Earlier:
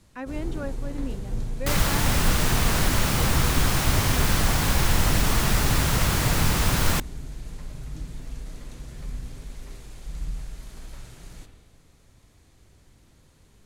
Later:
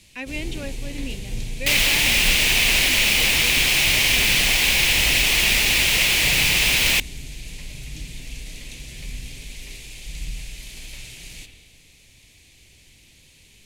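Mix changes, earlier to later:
second sound: add tone controls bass -12 dB, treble -5 dB; master: add resonant high shelf 1800 Hz +10.5 dB, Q 3

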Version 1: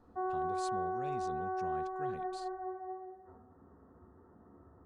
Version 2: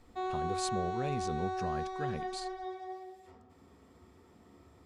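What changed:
speech +9.5 dB; background: remove steep low-pass 1700 Hz 72 dB/oct

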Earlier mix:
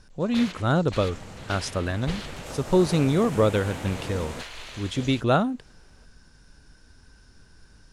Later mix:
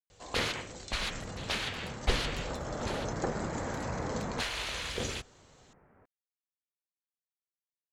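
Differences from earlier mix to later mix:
speech: muted; first sound +5.0 dB; second sound: add steep low-pass 2000 Hz

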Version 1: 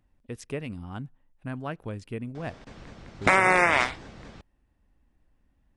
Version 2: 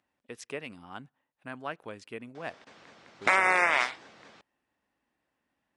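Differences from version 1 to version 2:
background -3.5 dB; master: add weighting filter A

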